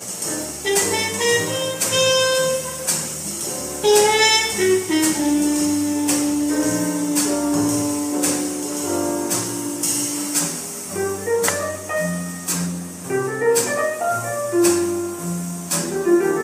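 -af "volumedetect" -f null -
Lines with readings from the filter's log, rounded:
mean_volume: -20.4 dB
max_volume: -1.5 dB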